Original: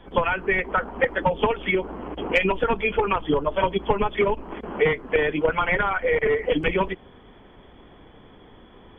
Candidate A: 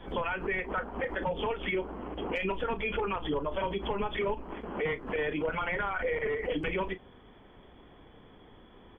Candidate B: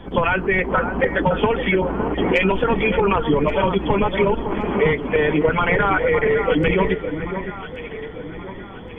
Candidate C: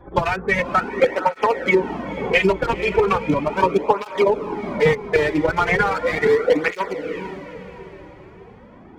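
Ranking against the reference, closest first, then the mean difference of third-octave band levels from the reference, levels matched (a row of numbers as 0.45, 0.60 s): A, B, C; 2.5, 4.5, 6.5 dB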